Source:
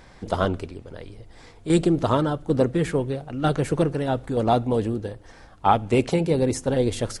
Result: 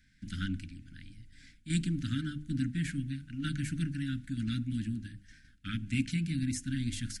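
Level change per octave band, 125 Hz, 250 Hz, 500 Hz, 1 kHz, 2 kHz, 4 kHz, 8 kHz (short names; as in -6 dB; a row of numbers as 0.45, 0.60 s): -7.5 dB, -9.5 dB, under -35 dB, -30.5 dB, -7.0 dB, -7.0 dB, -6.5 dB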